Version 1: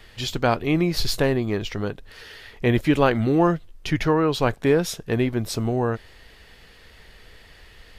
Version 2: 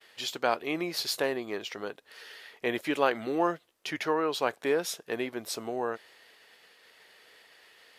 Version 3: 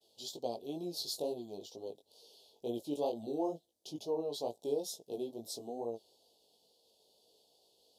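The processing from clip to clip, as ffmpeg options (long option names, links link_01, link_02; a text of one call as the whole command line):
ffmpeg -i in.wav -af "agate=range=-33dB:threshold=-46dB:ratio=3:detection=peak,highpass=420,equalizer=frequency=11000:width_type=o:width=0.77:gain=2.5,volume=-5dB" out.wav
ffmpeg -i in.wav -af "asuperstop=centerf=1700:order=8:qfactor=0.61,flanger=delay=17:depth=4.1:speed=2.2,volume=-4dB" out.wav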